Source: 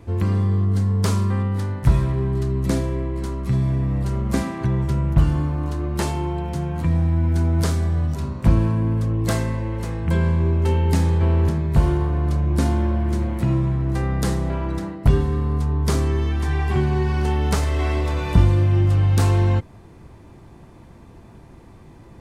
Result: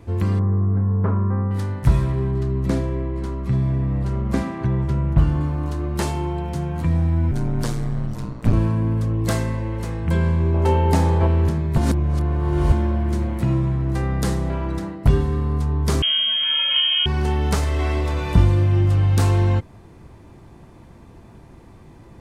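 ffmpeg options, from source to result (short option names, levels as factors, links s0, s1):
-filter_complex "[0:a]asettb=1/sr,asplit=3[s0][s1][s2];[s0]atrim=end=0.394[s3];[s1]atrim=start=0.39:end=1.51,asetpts=PTS-STARTPTS,afade=t=in:d=0.004:c=qsin,afade=t=out:st=1.116:d=0.004:c=qsin,lowpass=f=1500:w=0.5412,lowpass=f=1500:w=1.3066[s4];[s2]atrim=start=1.506[s5];[s3][s4]acrossfade=d=0.004:c1=hsin:c2=qsin[s6];[s6][s5]acrossfade=d=0.004:c1=qsin:c2=hsin,asettb=1/sr,asplit=3[s7][s8][s9];[s7]atrim=end=2.314[s10];[s8]atrim=start=2.31:end=5.41,asetpts=PTS-STARTPTS,afade=t=in:d=0.004:c=qsin,afade=t=out:st=3.096:d=0.004:c=qsin,highshelf=f=4800:g=-10.5[s11];[s9]atrim=start=5.406[s12];[s10][s11]acrossfade=d=0.004:c1=hsin:c2=qsin[s13];[s13][s12]acrossfade=d=0.004:c1=qsin:c2=hsin,asettb=1/sr,asplit=3[s14][s15][s16];[s14]atrim=end=7.314[s17];[s15]atrim=start=7.31:end=8.53,asetpts=PTS-STARTPTS,afade=t=in:d=0.004:c=qsin,afade=t=out:st=1.216:d=0.004:c=qsin,aeval=exprs='val(0)*sin(2*PI*58*n/s)':c=same[s18];[s16]atrim=start=8.526[s19];[s17][s18]acrossfade=d=0.004:c1=hsin:c2=qsin[s20];[s20][s19]acrossfade=d=0.004:c1=qsin:c2=hsin,asettb=1/sr,asplit=3[s21][s22][s23];[s21]atrim=end=10.544[s24];[s22]atrim=start=10.54:end=11.27,asetpts=PTS-STARTPTS,afade=t=in:d=0.004:c=qsin,afade=t=out:st=0.726:d=0.004:c=qsin,equalizer=f=730:w=0.92:g=9.5[s25];[s23]atrim=start=11.266[s26];[s24][s25]acrossfade=d=0.004:c1=hsin:c2=qsin[s27];[s27][s26]acrossfade=d=0.004:c1=qsin:c2=hsin,asettb=1/sr,asplit=3[s28][s29][s30];[s28]atrim=end=16.024[s31];[s29]atrim=start=16.02:end=17.06,asetpts=PTS-STARTPTS,afade=t=in:d=0.004:c=qsin,afade=t=out:st=1.036:d=0.004:c=qsin,lowpass=f=2800:t=q:w=0.5098,lowpass=f=2800:t=q:w=0.6013,lowpass=f=2800:t=q:w=0.9,lowpass=f=2800:t=q:w=2.563,afreqshift=-3300[s32];[s30]atrim=start=17.056[s33];[s31][s32]acrossfade=d=0.004:c1=hsin:c2=qsin[s34];[s34][s33]acrossfade=d=0.004:c1=qsin:c2=hsin,asplit=3[s35][s36][s37];[s35]atrim=end=11.782[s38];[s36]atrim=start=11.778:end=12.722,asetpts=PTS-STARTPTS,areverse[s39];[s37]atrim=start=12.718[s40];[s38][s39]acrossfade=d=0.004:c1=hsin:c2=hsin[s41];[s41][s40]acrossfade=d=0.004:c1=hsin:c2=hsin"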